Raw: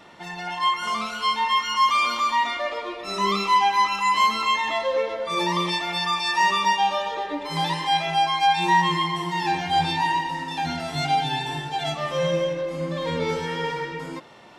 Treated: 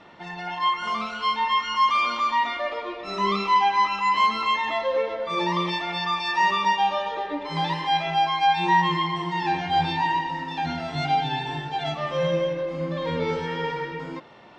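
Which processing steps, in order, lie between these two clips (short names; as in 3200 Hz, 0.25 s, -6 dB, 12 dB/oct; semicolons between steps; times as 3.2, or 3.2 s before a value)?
air absorption 140 m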